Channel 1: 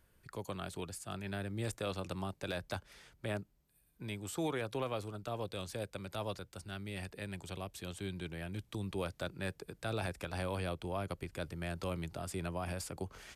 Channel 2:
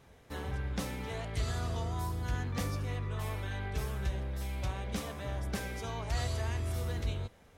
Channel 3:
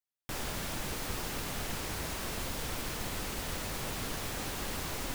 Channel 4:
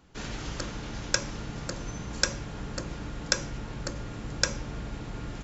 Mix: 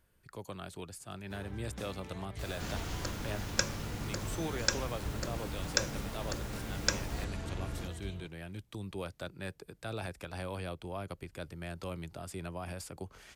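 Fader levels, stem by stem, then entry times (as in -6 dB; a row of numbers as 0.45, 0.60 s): -2.0, -9.5, -11.0, -4.0 dB; 0.00, 1.00, 2.10, 2.45 s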